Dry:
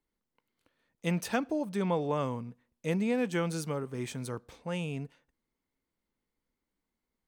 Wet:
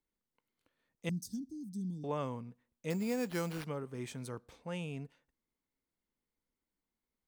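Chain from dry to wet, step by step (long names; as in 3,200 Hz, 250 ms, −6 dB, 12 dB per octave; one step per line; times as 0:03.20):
0:01.09–0:02.04: elliptic band-stop filter 260–5,200 Hz, stop band 40 dB
0:02.90–0:03.65: sample-rate reduction 7,200 Hz, jitter 0%
level −5.5 dB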